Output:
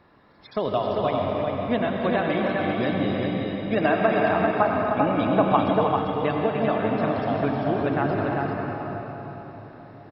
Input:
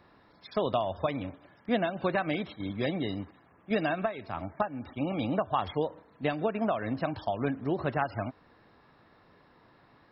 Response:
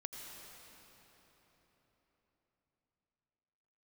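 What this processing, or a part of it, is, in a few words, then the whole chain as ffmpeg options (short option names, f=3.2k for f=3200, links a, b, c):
swimming-pool hall: -filter_complex "[1:a]atrim=start_sample=2205[a];[0:a][a]afir=irnorm=-1:irlink=0,highshelf=f=4.3k:g=-6.5,asettb=1/sr,asplit=3[b][c][d];[b]atrim=end=3.774[e];[c]atrim=start=3.77:end=5.57,asetpts=PTS-STARTPTS,afade=t=in:d=0.004:c=qsin,afade=t=out:st=1.796:d=0.004:c=qsin,equalizer=f=940:w=0.36:g=5.5[f];[d]atrim=start=5.566[g];[e][f]acrossfade=d=0.004:c1=hsin:c2=qsin[h];[h][g]acrossfade=d=0.004:c1=qsin:c2=hsin,aecho=1:1:310|394:0.398|0.631,volume=7.5dB"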